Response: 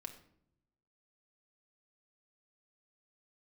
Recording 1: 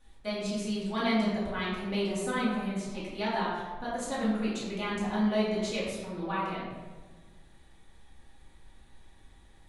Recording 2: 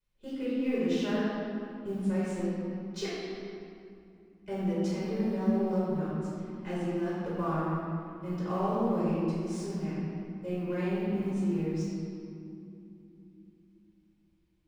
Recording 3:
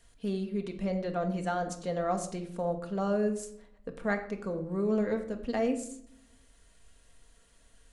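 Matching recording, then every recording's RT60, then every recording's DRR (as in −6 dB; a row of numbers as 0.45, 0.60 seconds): 3; 1.5 s, 2.9 s, non-exponential decay; −9.0, −11.0, 4.0 decibels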